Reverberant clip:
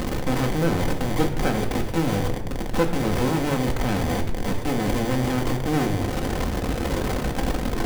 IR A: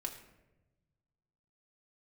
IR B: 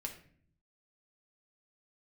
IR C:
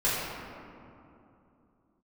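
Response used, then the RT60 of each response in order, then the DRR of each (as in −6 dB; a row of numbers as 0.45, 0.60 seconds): A; 1.0, 0.55, 2.8 seconds; 1.0, 1.0, −10.0 decibels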